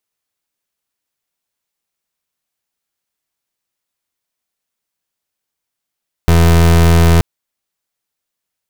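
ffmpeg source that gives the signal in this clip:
-f lavfi -i "aevalsrc='0.398*(2*lt(mod(83.6*t,1),0.3)-1)':d=0.93:s=44100"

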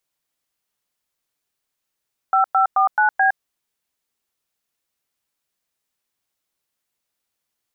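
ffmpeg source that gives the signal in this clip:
-f lavfi -i "aevalsrc='0.168*clip(min(mod(t,0.216),0.112-mod(t,0.216))/0.002,0,1)*(eq(floor(t/0.216),0)*(sin(2*PI*770*mod(t,0.216))+sin(2*PI*1336*mod(t,0.216)))+eq(floor(t/0.216),1)*(sin(2*PI*770*mod(t,0.216))+sin(2*PI*1336*mod(t,0.216)))+eq(floor(t/0.216),2)*(sin(2*PI*770*mod(t,0.216))+sin(2*PI*1209*mod(t,0.216)))+eq(floor(t/0.216),3)*(sin(2*PI*852*mod(t,0.216))+sin(2*PI*1477*mod(t,0.216)))+eq(floor(t/0.216),4)*(sin(2*PI*770*mod(t,0.216))+sin(2*PI*1633*mod(t,0.216))))':d=1.08:s=44100"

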